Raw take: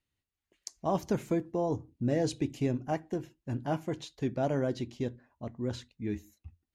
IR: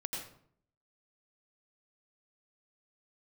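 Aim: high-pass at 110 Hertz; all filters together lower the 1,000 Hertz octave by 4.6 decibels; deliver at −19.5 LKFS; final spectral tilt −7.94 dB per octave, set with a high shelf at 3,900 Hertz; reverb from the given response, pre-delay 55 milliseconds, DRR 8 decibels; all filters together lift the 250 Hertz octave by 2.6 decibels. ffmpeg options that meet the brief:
-filter_complex "[0:a]highpass=110,equalizer=frequency=250:width_type=o:gain=4,equalizer=frequency=1000:width_type=o:gain=-7,highshelf=frequency=3900:gain=-7.5,asplit=2[link_01][link_02];[1:a]atrim=start_sample=2205,adelay=55[link_03];[link_02][link_03]afir=irnorm=-1:irlink=0,volume=-9dB[link_04];[link_01][link_04]amix=inputs=2:normalize=0,volume=13dB"

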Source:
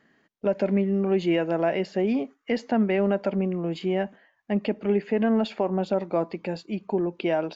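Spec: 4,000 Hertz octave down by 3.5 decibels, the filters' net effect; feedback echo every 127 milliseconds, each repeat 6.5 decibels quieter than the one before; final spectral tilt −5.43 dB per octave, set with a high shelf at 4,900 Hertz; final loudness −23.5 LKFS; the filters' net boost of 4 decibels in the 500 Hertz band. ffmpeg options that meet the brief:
ffmpeg -i in.wav -af "equalizer=frequency=500:width_type=o:gain=5.5,equalizer=frequency=4000:width_type=o:gain=-3,highshelf=frequency=4900:gain=-5.5,aecho=1:1:127|254|381|508|635|762:0.473|0.222|0.105|0.0491|0.0231|0.0109,volume=-1.5dB" out.wav

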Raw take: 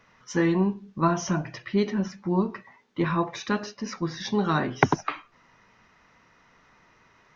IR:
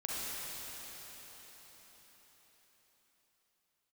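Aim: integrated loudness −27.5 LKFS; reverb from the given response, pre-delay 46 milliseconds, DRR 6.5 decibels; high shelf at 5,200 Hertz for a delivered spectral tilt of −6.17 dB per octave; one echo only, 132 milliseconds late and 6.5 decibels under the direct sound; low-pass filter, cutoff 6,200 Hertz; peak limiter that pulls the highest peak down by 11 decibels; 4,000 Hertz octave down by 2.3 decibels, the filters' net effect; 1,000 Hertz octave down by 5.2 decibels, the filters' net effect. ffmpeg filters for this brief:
-filter_complex "[0:a]lowpass=6200,equalizer=frequency=1000:width_type=o:gain=-6.5,equalizer=frequency=4000:width_type=o:gain=-5.5,highshelf=frequency=5200:gain=8,alimiter=limit=-17.5dB:level=0:latency=1,aecho=1:1:132:0.473,asplit=2[link_01][link_02];[1:a]atrim=start_sample=2205,adelay=46[link_03];[link_02][link_03]afir=irnorm=-1:irlink=0,volume=-11dB[link_04];[link_01][link_04]amix=inputs=2:normalize=0,volume=1dB"

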